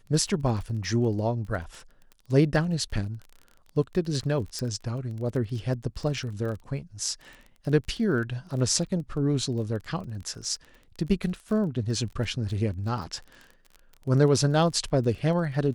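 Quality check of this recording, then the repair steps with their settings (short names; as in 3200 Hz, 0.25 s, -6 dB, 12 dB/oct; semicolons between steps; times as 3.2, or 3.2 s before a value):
crackle 22/s -35 dBFS
4.59 pop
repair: de-click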